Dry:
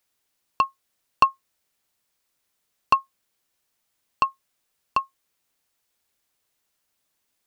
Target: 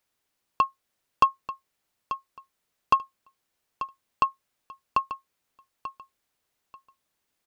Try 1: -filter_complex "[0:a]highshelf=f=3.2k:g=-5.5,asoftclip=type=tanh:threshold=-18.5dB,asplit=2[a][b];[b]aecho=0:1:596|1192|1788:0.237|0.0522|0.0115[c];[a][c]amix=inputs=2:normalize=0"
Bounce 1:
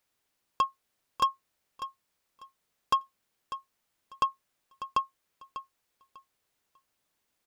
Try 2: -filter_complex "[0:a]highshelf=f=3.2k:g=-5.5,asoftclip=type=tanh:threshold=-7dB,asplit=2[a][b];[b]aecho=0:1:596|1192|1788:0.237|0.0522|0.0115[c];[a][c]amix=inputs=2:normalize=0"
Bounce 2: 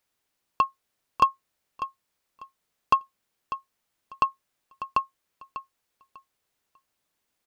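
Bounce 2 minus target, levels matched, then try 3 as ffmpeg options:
echo 0.292 s early
-filter_complex "[0:a]highshelf=f=3.2k:g=-5.5,asoftclip=type=tanh:threshold=-7dB,asplit=2[a][b];[b]aecho=0:1:888|1776|2664:0.237|0.0522|0.0115[c];[a][c]amix=inputs=2:normalize=0"

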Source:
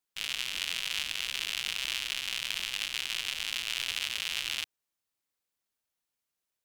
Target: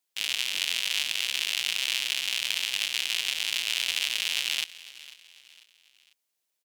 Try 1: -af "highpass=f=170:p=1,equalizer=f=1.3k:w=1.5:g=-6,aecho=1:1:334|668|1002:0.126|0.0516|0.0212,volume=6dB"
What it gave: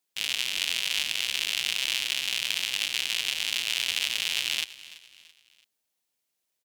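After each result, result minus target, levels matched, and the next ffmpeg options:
125 Hz band +6.5 dB; echo 0.162 s early
-af "highpass=f=450:p=1,equalizer=f=1.3k:w=1.5:g=-6,aecho=1:1:334|668|1002:0.126|0.0516|0.0212,volume=6dB"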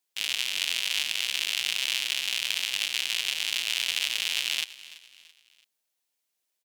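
echo 0.162 s early
-af "highpass=f=450:p=1,equalizer=f=1.3k:w=1.5:g=-6,aecho=1:1:496|992|1488:0.126|0.0516|0.0212,volume=6dB"

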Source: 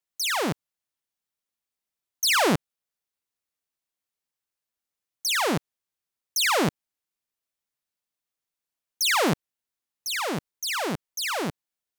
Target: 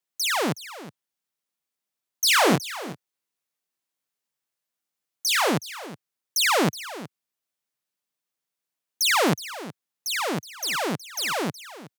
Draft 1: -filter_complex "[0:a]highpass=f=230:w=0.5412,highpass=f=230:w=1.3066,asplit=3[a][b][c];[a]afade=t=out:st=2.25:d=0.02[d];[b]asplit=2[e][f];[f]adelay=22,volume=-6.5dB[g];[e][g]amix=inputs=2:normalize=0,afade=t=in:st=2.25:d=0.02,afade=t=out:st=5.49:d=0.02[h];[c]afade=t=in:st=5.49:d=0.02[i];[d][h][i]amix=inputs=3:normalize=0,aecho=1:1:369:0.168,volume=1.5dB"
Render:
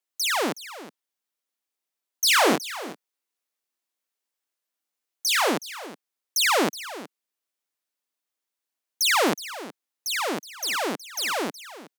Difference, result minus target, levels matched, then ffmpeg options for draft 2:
125 Hz band -11.0 dB
-filter_complex "[0:a]highpass=f=110:w=0.5412,highpass=f=110:w=1.3066,asplit=3[a][b][c];[a]afade=t=out:st=2.25:d=0.02[d];[b]asplit=2[e][f];[f]adelay=22,volume=-6.5dB[g];[e][g]amix=inputs=2:normalize=0,afade=t=in:st=2.25:d=0.02,afade=t=out:st=5.49:d=0.02[h];[c]afade=t=in:st=5.49:d=0.02[i];[d][h][i]amix=inputs=3:normalize=0,aecho=1:1:369:0.168,volume=1.5dB"

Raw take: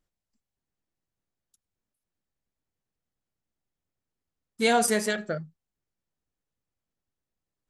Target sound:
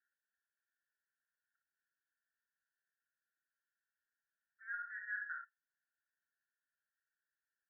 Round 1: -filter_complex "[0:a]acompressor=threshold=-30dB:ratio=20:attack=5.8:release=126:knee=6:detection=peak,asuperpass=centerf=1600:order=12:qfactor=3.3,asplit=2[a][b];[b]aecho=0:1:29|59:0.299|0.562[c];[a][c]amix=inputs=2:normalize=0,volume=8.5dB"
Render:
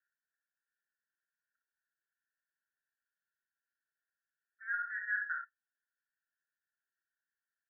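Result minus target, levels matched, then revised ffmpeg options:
compressor: peak gain reduction -7 dB
-filter_complex "[0:a]acompressor=threshold=-37.5dB:ratio=20:attack=5.8:release=126:knee=6:detection=peak,asuperpass=centerf=1600:order=12:qfactor=3.3,asplit=2[a][b];[b]aecho=0:1:29|59:0.299|0.562[c];[a][c]amix=inputs=2:normalize=0,volume=8.5dB"

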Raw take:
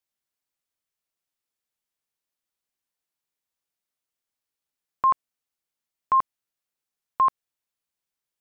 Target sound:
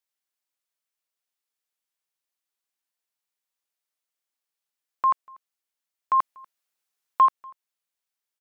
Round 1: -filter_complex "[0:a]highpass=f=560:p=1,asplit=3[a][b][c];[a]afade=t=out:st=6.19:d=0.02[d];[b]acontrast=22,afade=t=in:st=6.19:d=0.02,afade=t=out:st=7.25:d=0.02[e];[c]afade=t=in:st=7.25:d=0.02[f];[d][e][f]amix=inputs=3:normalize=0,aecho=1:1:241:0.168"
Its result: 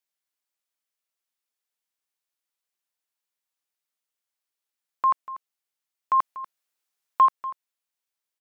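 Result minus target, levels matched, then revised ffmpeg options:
echo-to-direct +11 dB
-filter_complex "[0:a]highpass=f=560:p=1,asplit=3[a][b][c];[a]afade=t=out:st=6.19:d=0.02[d];[b]acontrast=22,afade=t=in:st=6.19:d=0.02,afade=t=out:st=7.25:d=0.02[e];[c]afade=t=in:st=7.25:d=0.02[f];[d][e][f]amix=inputs=3:normalize=0,aecho=1:1:241:0.0473"

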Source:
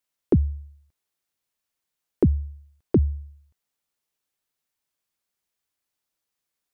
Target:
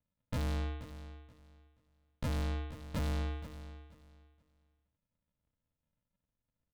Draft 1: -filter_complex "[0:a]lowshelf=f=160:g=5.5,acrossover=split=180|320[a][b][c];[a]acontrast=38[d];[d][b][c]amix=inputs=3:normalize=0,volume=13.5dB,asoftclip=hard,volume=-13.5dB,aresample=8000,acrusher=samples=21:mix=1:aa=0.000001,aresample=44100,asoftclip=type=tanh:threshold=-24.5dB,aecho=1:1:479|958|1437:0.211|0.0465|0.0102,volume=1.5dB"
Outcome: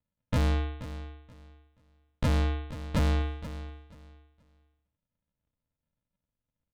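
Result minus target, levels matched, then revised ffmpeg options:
soft clip: distortion -5 dB
-filter_complex "[0:a]lowshelf=f=160:g=5.5,acrossover=split=180|320[a][b][c];[a]acontrast=38[d];[d][b][c]amix=inputs=3:normalize=0,volume=13.5dB,asoftclip=hard,volume=-13.5dB,aresample=8000,acrusher=samples=21:mix=1:aa=0.000001,aresample=44100,asoftclip=type=tanh:threshold=-34dB,aecho=1:1:479|958|1437:0.211|0.0465|0.0102,volume=1.5dB"

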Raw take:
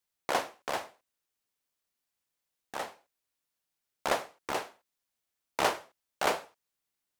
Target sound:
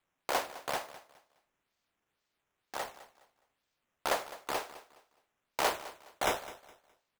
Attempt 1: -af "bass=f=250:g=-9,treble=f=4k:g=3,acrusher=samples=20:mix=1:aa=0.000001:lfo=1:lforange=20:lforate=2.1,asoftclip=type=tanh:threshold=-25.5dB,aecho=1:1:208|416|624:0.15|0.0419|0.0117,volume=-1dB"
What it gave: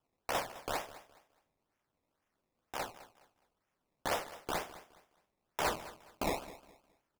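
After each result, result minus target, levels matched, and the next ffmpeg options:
soft clip: distortion +10 dB; decimation with a swept rate: distortion +9 dB
-af "bass=f=250:g=-9,treble=f=4k:g=3,acrusher=samples=20:mix=1:aa=0.000001:lfo=1:lforange=20:lforate=2.1,asoftclip=type=tanh:threshold=-16.5dB,aecho=1:1:208|416|624:0.15|0.0419|0.0117,volume=-1dB"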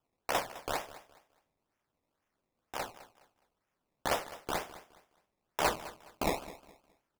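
decimation with a swept rate: distortion +9 dB
-af "bass=f=250:g=-9,treble=f=4k:g=3,acrusher=samples=7:mix=1:aa=0.000001:lfo=1:lforange=7:lforate=2.1,asoftclip=type=tanh:threshold=-16.5dB,aecho=1:1:208|416|624:0.15|0.0419|0.0117,volume=-1dB"

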